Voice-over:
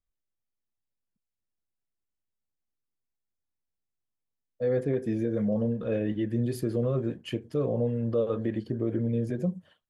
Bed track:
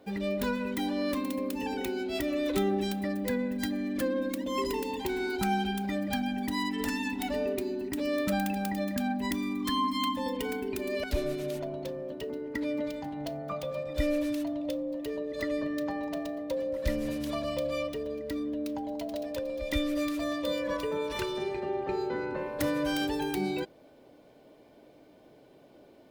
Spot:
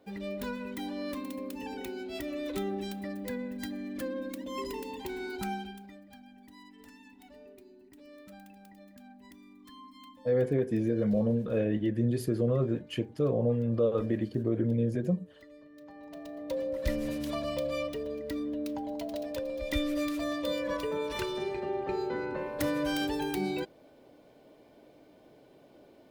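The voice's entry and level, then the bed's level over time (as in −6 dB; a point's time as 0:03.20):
5.65 s, 0.0 dB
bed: 0:05.48 −6 dB
0:06.05 −22 dB
0:15.69 −22 dB
0:16.55 −1 dB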